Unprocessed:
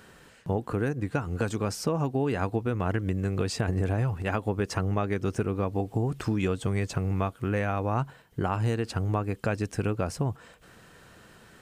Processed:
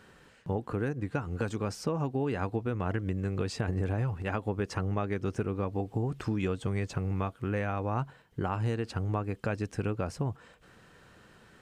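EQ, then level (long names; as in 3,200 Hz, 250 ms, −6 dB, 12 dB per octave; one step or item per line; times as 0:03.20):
high-shelf EQ 8,400 Hz −10 dB
notch filter 670 Hz, Q 22
−3.5 dB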